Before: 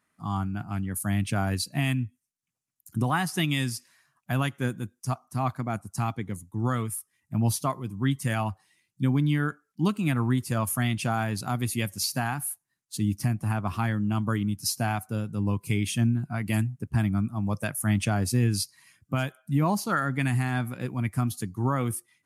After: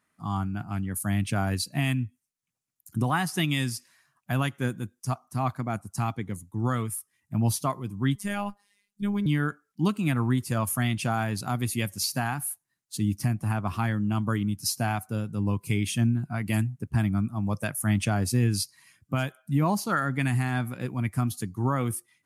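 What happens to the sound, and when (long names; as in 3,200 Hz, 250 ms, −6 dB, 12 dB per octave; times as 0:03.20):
0:08.15–0:09.26: phases set to zero 203 Hz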